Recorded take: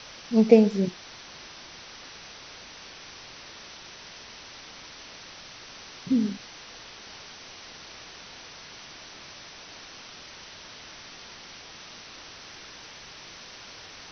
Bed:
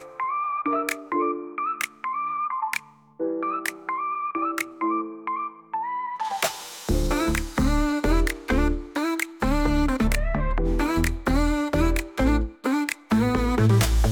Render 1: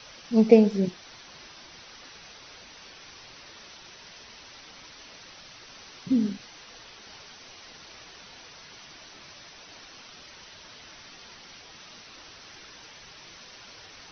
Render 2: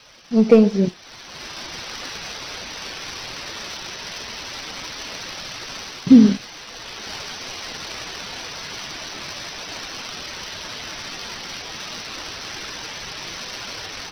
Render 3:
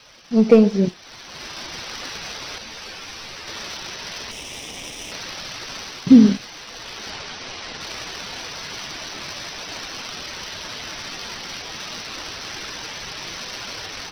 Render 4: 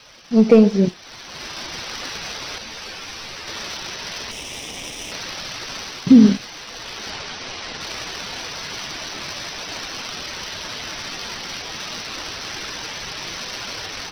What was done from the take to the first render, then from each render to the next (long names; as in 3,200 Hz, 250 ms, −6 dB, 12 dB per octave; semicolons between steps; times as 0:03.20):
broadband denoise 6 dB, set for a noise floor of −46 dBFS
leveller curve on the samples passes 1; automatic gain control gain up to 16 dB
0:02.58–0:03.48: string-ensemble chorus; 0:04.31–0:05.12: lower of the sound and its delayed copy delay 0.35 ms; 0:07.10–0:07.81: high-frequency loss of the air 59 metres
level +2 dB; brickwall limiter −2 dBFS, peak gain reduction 2.5 dB